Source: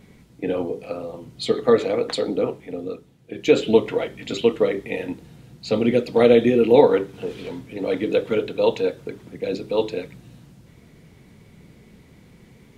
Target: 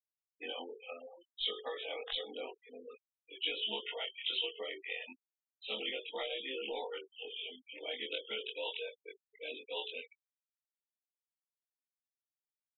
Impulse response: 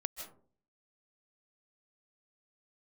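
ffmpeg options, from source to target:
-filter_complex "[0:a]afftfilt=real='re':imag='-im':win_size=2048:overlap=0.75,aderivative,asplit=2[link_01][link_02];[link_02]aeval=exprs='clip(val(0),-1,0.00891)':channel_layout=same,volume=-7.5dB[link_03];[link_01][link_03]amix=inputs=2:normalize=0,aresample=8000,aresample=44100,acrusher=bits=8:mode=log:mix=0:aa=0.000001,acompressor=threshold=-43dB:ratio=8,equalizer=frequency=160:width_type=o:width=0.33:gain=-9,equalizer=frequency=800:width_type=o:width=0.33:gain=6,equalizer=frequency=3150:width_type=o:width=0.33:gain=10,afftfilt=real='re*gte(hypot(re,im),0.00501)':imag='im*gte(hypot(re,im),0.00501)':win_size=1024:overlap=0.75,volume=5dB"

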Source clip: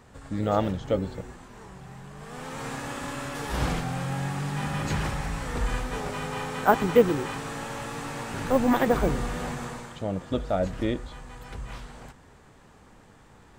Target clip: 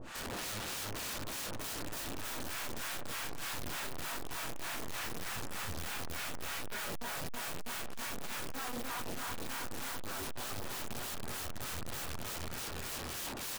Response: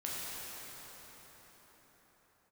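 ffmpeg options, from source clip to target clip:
-filter_complex "[0:a]bandreject=frequency=213.9:width_type=h:width=4,bandreject=frequency=427.8:width_type=h:width=4,bandreject=frequency=641.7:width_type=h:width=4,aeval=exprs='abs(val(0))':channel_layout=same[link_01];[1:a]atrim=start_sample=2205,atrim=end_sample=3528[link_02];[link_01][link_02]afir=irnorm=-1:irlink=0,acrossover=split=730[link_03][link_04];[link_03]aeval=exprs='val(0)*(1-1/2+1/2*cos(2*PI*3.3*n/s))':channel_layout=same[link_05];[link_04]aeval=exprs='val(0)*(1-1/2-1/2*cos(2*PI*3.3*n/s))':channel_layout=same[link_06];[link_05][link_06]amix=inputs=2:normalize=0,asplit=2[link_07][link_08];[link_08]adelay=325,lowpass=frequency=2900:poles=1,volume=-7dB,asplit=2[link_09][link_10];[link_10]adelay=325,lowpass=frequency=2900:poles=1,volume=0.55,asplit=2[link_11][link_12];[link_12]adelay=325,lowpass=frequency=2900:poles=1,volume=0.55,asplit=2[link_13][link_14];[link_14]adelay=325,lowpass=frequency=2900:poles=1,volume=0.55,asplit=2[link_15][link_16];[link_16]adelay=325,lowpass=frequency=2900:poles=1,volume=0.55,asplit=2[link_17][link_18];[link_18]adelay=325,lowpass=frequency=2900:poles=1,volume=0.55,asplit=2[link_19][link_20];[link_20]adelay=325,lowpass=frequency=2900:poles=1,volume=0.55[link_21];[link_07][link_09][link_11][link_13][link_15][link_17][link_19][link_21]amix=inputs=8:normalize=0,acompressor=threshold=-48dB:ratio=2,equalizer=frequency=2700:width_type=o:width=2:gain=3.5,dynaudnorm=framelen=270:gausssize=11:maxgain=15.5dB,aeval=exprs='(tanh(89.1*val(0)+0.25)-tanh(0.25))/89.1':channel_layout=same,aeval=exprs='(mod(335*val(0)+1,2)-1)/335':channel_layout=same,bandreject=frequency=2100:width=24,volume=15.5dB"

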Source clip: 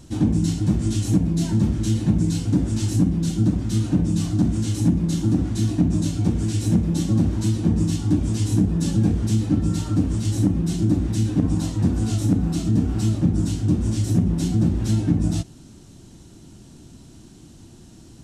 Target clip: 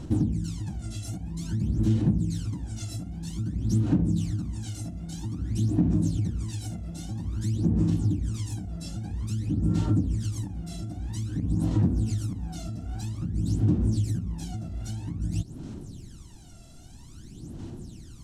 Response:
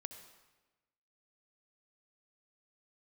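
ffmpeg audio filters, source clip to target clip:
-af "acompressor=threshold=-27dB:ratio=6,aphaser=in_gain=1:out_gain=1:delay=1.5:decay=0.77:speed=0.51:type=sinusoidal,volume=-5.5dB"

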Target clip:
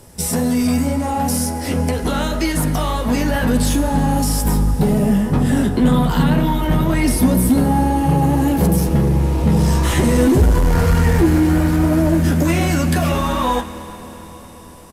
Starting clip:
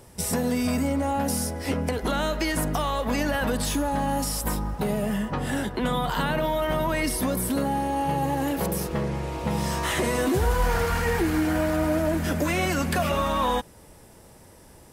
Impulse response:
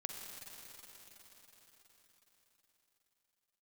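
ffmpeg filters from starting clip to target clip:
-filter_complex "[0:a]bandreject=frequency=89.08:width_type=h:width=4,bandreject=frequency=178.16:width_type=h:width=4,bandreject=frequency=267.24:width_type=h:width=4,bandreject=frequency=356.32:width_type=h:width=4,bandreject=frequency=445.4:width_type=h:width=4,bandreject=frequency=534.48:width_type=h:width=4,bandreject=frequency=623.56:width_type=h:width=4,bandreject=frequency=712.64:width_type=h:width=4,bandreject=frequency=801.72:width_type=h:width=4,bandreject=frequency=890.8:width_type=h:width=4,bandreject=frequency=979.88:width_type=h:width=4,bandreject=frequency=1068.96:width_type=h:width=4,bandreject=frequency=1158.04:width_type=h:width=4,bandreject=frequency=1247.12:width_type=h:width=4,bandreject=frequency=1336.2:width_type=h:width=4,bandreject=frequency=1425.28:width_type=h:width=4,bandreject=frequency=1514.36:width_type=h:width=4,bandreject=frequency=1603.44:width_type=h:width=4,bandreject=frequency=1692.52:width_type=h:width=4,bandreject=frequency=1781.6:width_type=h:width=4,bandreject=frequency=1870.68:width_type=h:width=4,bandreject=frequency=1959.76:width_type=h:width=4,bandreject=frequency=2048.84:width_type=h:width=4,bandreject=frequency=2137.92:width_type=h:width=4,bandreject=frequency=2227:width_type=h:width=4,bandreject=frequency=2316.08:width_type=h:width=4,bandreject=frequency=2405.16:width_type=h:width=4,bandreject=frequency=2494.24:width_type=h:width=4,bandreject=frequency=2583.32:width_type=h:width=4,bandreject=frequency=2672.4:width_type=h:width=4,bandreject=frequency=2761.48:width_type=h:width=4,acrossover=split=330|3900[link_01][link_02][link_03];[link_01]dynaudnorm=framelen=570:gausssize=13:maxgain=10dB[link_04];[link_02]flanger=delay=15:depth=5.7:speed=2[link_05];[link_04][link_05][link_03]amix=inputs=3:normalize=0,asoftclip=type=tanh:threshold=-15dB,asplit=2[link_06][link_07];[link_07]adelay=12,volume=-11dB[link_08];[link_06][link_08]amix=inputs=2:normalize=0,asplit=2[link_09][link_10];[1:a]atrim=start_sample=2205[link_11];[link_10][link_11]afir=irnorm=-1:irlink=0,volume=-3.5dB[link_12];[link_09][link_12]amix=inputs=2:normalize=0,aresample=32000,aresample=44100,volume=4dB"

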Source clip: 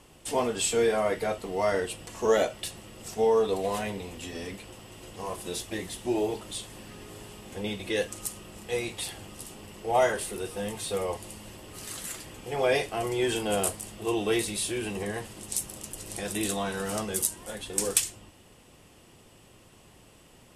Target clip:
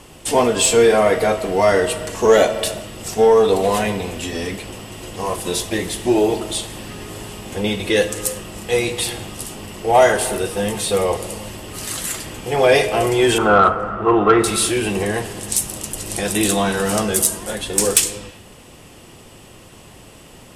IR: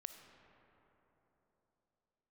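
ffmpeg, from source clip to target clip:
-filter_complex "[0:a]asettb=1/sr,asplit=3[link_01][link_02][link_03];[link_01]atrim=end=13.384[link_04];[link_02]atrim=start=13.38:end=14.44,asetpts=PTS-STARTPTS,afade=type=in:duration=0.004:curve=qsin,afade=type=out:start_time=1.056:duration=0.004:curve=qsin,lowpass=frequency=1300:width_type=q:width=13[link_05];[link_03]atrim=start=14.436[link_06];[link_04][link_05]acrossfade=duration=0.004:curve1=hsin:curve2=qsin[link_07];[link_07][link_06]acrossfade=duration=0.004:curve1=qsin:curve2=hsin,asplit=2[link_08][link_09];[1:a]atrim=start_sample=2205,afade=type=out:start_time=0.44:duration=0.01,atrim=end_sample=19845[link_10];[link_09][link_10]afir=irnorm=-1:irlink=0,volume=8dB[link_11];[link_08][link_11]amix=inputs=2:normalize=0,acontrast=49,volume=-1dB"

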